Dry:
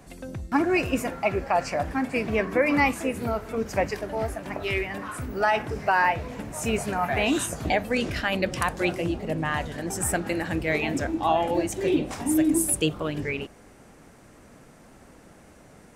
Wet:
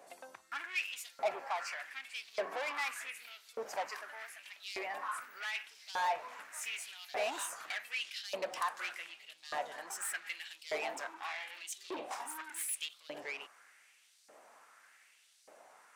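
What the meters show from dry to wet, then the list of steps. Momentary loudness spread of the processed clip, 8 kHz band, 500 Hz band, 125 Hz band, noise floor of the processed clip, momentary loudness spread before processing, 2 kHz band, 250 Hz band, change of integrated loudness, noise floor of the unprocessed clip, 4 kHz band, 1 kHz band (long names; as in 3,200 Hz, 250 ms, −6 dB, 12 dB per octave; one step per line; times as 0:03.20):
10 LU, −11.0 dB, −16.0 dB, below −40 dB, −66 dBFS, 9 LU, −11.5 dB, −31.0 dB, −14.0 dB, −52 dBFS, −7.5 dB, −12.5 dB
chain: soft clipping −26 dBFS, distortion −8 dB
auto-filter high-pass saw up 0.84 Hz 550–4,700 Hz
level −7.5 dB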